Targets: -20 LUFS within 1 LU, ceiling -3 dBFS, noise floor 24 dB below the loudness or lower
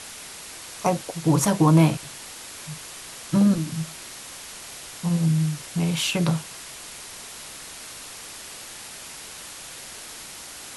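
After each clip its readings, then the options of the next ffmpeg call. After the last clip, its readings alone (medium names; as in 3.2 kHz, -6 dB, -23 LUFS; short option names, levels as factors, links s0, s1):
noise floor -40 dBFS; noise floor target -47 dBFS; loudness -23.0 LUFS; peak level -6.0 dBFS; loudness target -20.0 LUFS
-> -af "afftdn=nr=7:nf=-40"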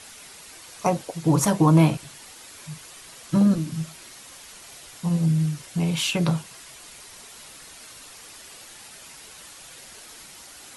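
noise floor -45 dBFS; noise floor target -47 dBFS
-> -af "afftdn=nr=6:nf=-45"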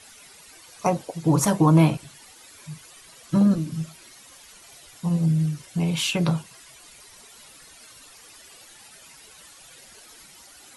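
noise floor -49 dBFS; loudness -22.5 LUFS; peak level -6.0 dBFS; loudness target -20.0 LUFS
-> -af "volume=1.33"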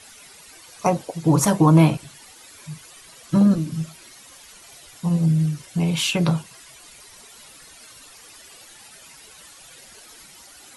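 loudness -20.0 LUFS; peak level -3.5 dBFS; noise floor -47 dBFS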